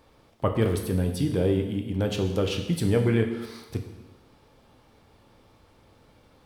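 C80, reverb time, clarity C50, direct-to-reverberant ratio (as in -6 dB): 9.0 dB, 1.1 s, 7.5 dB, 3.5 dB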